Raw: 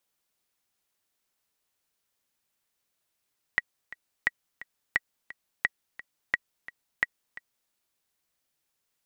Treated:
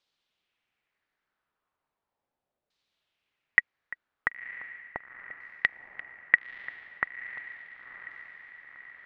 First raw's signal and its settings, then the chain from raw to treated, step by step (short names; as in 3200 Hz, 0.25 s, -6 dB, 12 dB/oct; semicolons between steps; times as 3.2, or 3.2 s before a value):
metronome 174 bpm, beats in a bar 2, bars 6, 1920 Hz, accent 18 dB -9.5 dBFS
LFO low-pass saw down 0.37 Hz 580–4300 Hz; diffused feedback echo 0.996 s, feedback 59%, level -13 dB